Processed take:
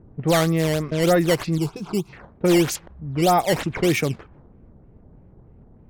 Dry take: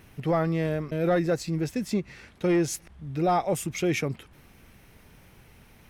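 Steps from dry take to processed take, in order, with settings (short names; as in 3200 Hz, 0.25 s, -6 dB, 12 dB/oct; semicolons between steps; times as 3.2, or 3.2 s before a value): decimation with a swept rate 10×, swing 160% 3.2 Hz; low-pass opened by the level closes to 410 Hz, open at -23 dBFS; 1.58–2.13 fixed phaser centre 370 Hz, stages 8; gain +6 dB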